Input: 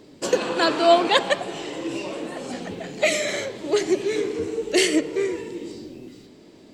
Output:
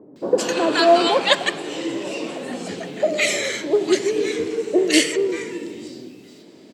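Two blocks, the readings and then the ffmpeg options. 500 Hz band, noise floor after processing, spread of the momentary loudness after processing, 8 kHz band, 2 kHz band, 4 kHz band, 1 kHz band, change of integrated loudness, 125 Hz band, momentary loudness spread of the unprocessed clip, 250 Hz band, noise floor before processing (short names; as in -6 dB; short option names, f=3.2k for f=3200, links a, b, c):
+2.5 dB, -46 dBFS, 15 LU, +3.5 dB, +3.0 dB, +3.5 dB, +1.5 dB, +2.5 dB, +0.5 dB, 16 LU, +3.0 dB, -49 dBFS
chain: -filter_complex "[0:a]highpass=150,acrossover=split=990[a][b];[b]adelay=160[c];[a][c]amix=inputs=2:normalize=0,volume=3.5dB"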